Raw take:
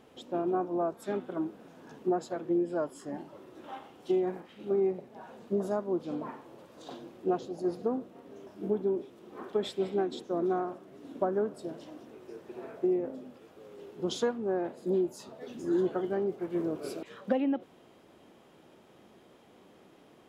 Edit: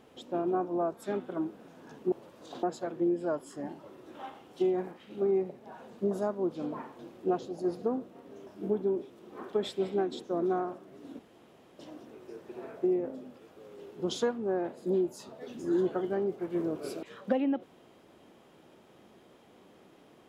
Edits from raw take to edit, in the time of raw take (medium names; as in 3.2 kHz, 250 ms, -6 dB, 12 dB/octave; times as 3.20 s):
6.48–6.99 s: move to 2.12 s
11.19–11.79 s: room tone